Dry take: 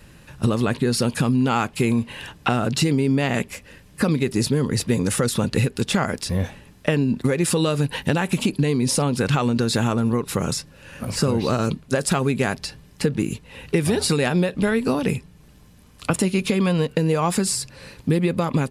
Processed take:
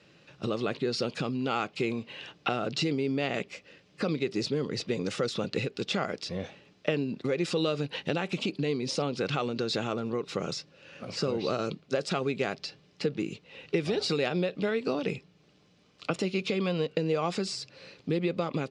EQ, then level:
loudspeaker in its box 220–5,500 Hz, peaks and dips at 240 Hz −7 dB, 950 Hz −9 dB, 1,700 Hz −7 dB
−5.0 dB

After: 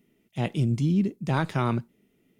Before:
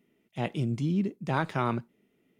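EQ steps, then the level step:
low-shelf EQ 74 Hz +7.5 dB
low-shelf EQ 410 Hz +6 dB
high-shelf EQ 3,100 Hz +8.5 dB
−1.5 dB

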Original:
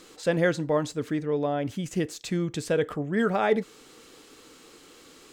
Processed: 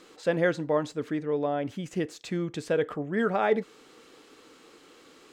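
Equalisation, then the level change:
low-shelf EQ 130 Hz −11 dB
high-shelf EQ 4,700 Hz −10.5 dB
0.0 dB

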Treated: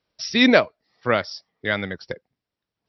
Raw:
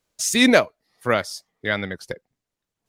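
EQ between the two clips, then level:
high-pass filter 43 Hz
linear-phase brick-wall low-pass 5,800 Hz
0.0 dB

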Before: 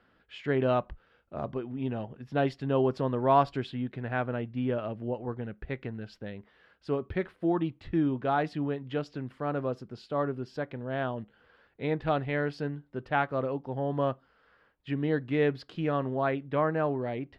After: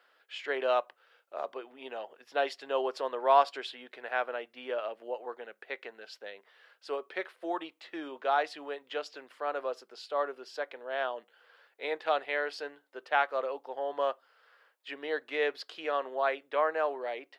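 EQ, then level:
high-pass filter 470 Hz 24 dB per octave
high-shelf EQ 3,300 Hz +9 dB
0.0 dB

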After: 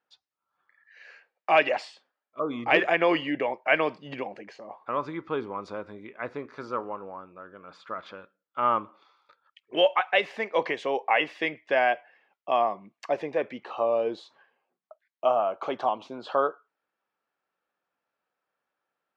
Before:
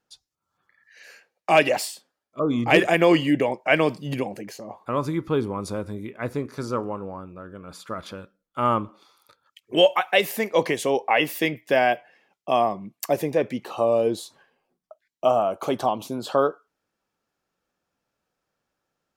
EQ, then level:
resonant band-pass 1,500 Hz, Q 0.54
high-frequency loss of the air 140 metres
0.0 dB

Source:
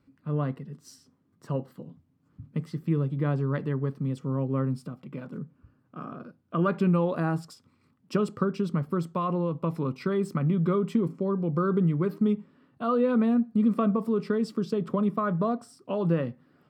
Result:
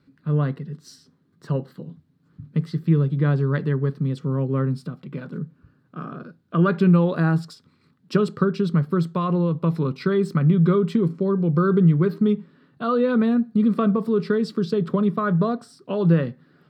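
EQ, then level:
graphic EQ with 15 bands 160 Hz +9 dB, 400 Hz +6 dB, 1,600 Hz +8 dB, 4,000 Hz +11 dB
0.0 dB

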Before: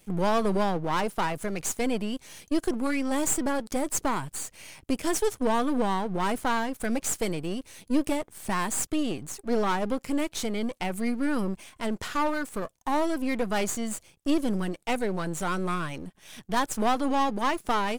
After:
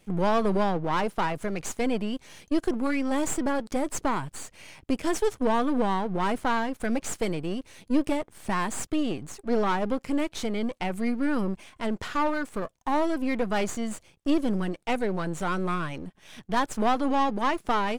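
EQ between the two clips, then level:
high-shelf EQ 6,800 Hz −12 dB
+1.0 dB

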